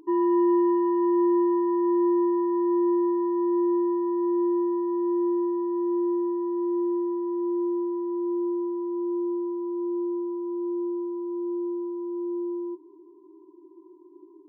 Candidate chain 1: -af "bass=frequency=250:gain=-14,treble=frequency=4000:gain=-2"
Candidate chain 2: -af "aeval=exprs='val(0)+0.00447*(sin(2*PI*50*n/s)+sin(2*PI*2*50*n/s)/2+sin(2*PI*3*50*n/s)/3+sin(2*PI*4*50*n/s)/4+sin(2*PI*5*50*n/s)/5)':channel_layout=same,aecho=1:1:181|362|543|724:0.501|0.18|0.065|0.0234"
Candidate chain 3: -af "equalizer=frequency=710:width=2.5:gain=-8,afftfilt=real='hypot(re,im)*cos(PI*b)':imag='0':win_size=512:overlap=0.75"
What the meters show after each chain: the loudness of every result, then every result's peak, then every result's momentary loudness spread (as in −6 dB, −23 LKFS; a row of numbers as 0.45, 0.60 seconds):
−29.0, −21.5, −26.5 LKFS; −17.5, −11.0, −16.0 dBFS; 9, 8, 9 LU